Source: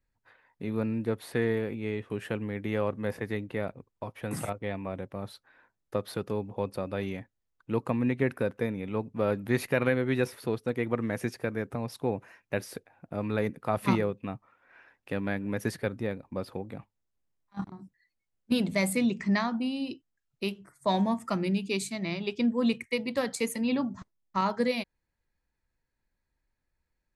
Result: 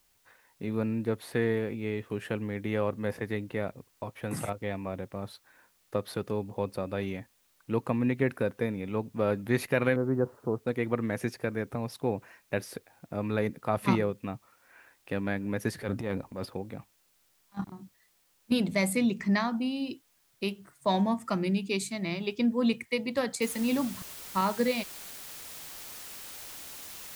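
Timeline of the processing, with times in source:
9.96–10.67 steep low-pass 1300 Hz
15.73–16.46 transient shaper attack -8 dB, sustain +9 dB
23.42 noise floor step -69 dB -44 dB

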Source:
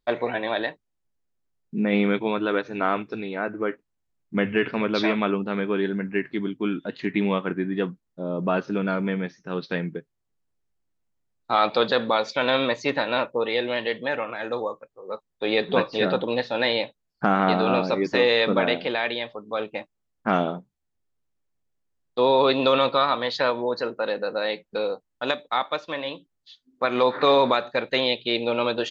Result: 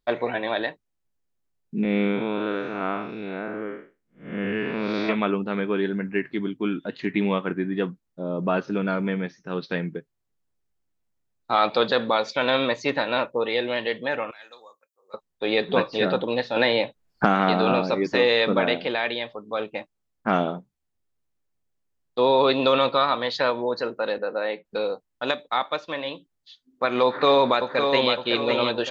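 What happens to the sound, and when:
1.83–5.09 time blur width 0.208 s
14.31–15.14 differentiator
16.56–17.72 three-band squash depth 70%
24.18–24.65 BPF 210–2400 Hz
27.05–28.14 echo throw 0.56 s, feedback 45%, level -5.5 dB

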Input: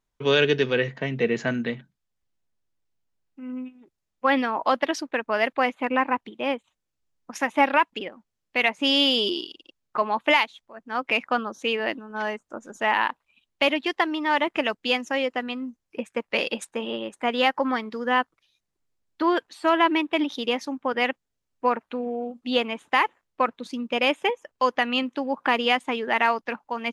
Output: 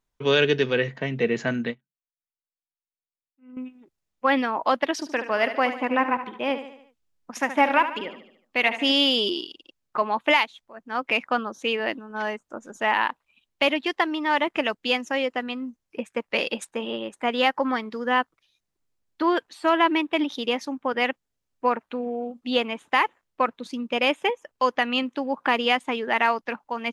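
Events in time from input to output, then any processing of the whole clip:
1.68–3.57 upward expander 2.5:1, over -46 dBFS
4.92–8.92 feedback echo 73 ms, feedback 50%, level -11 dB

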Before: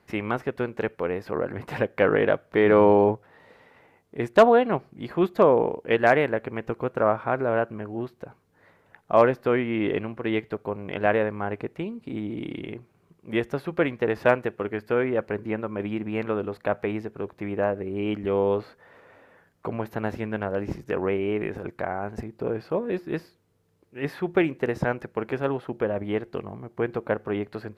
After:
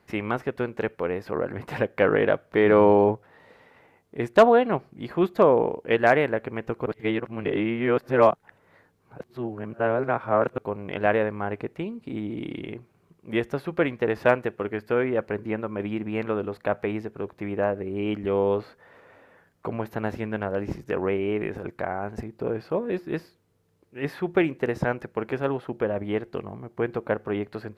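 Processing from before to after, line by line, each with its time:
6.86–10.58 reverse

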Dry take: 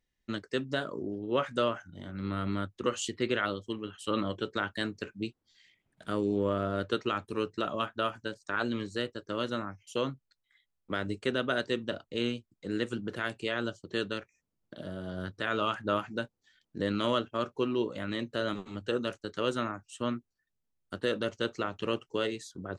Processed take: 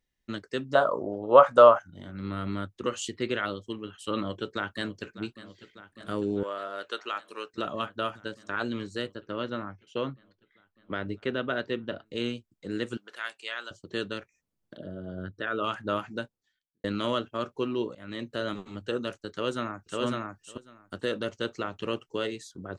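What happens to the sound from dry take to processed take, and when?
0.75–1.79 band shelf 820 Hz +16 dB
4.16–5.2 echo throw 0.6 s, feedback 80%, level -16 dB
6.43–7.54 HPF 650 Hz
9.15–12.06 LPF 3300 Hz
12.97–13.71 HPF 1000 Hz
14.77–15.64 formant sharpening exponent 1.5
16.19–16.84 fade out quadratic
17.95–18.36 fade in equal-power, from -21 dB
19.31–20.02 echo throw 0.55 s, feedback 10%, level -1 dB

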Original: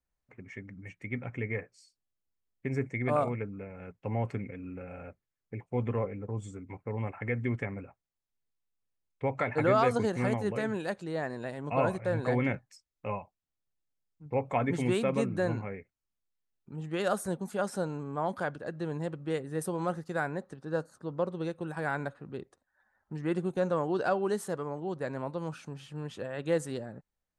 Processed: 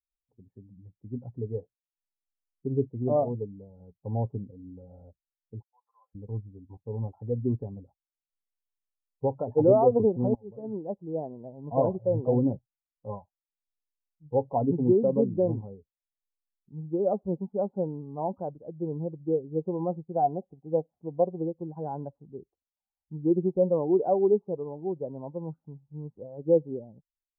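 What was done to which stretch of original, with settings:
5.62–6.15 inverse Chebyshev high-pass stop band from 270 Hz, stop band 70 dB
10.35–10.87 fade in, from -22 dB
20.12–21.48 small resonant body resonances 720/1900 Hz, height 11 dB
whole clip: per-bin expansion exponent 1.5; dynamic EQ 400 Hz, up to +6 dB, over -45 dBFS, Q 1.2; steep low-pass 900 Hz 48 dB/oct; gain +4.5 dB

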